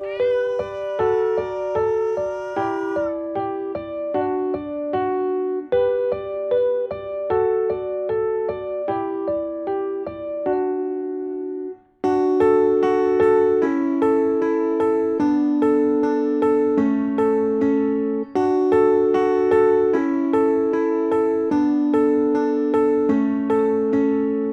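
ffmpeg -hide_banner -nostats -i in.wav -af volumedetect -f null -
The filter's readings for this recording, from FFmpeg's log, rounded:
mean_volume: -19.8 dB
max_volume: -6.6 dB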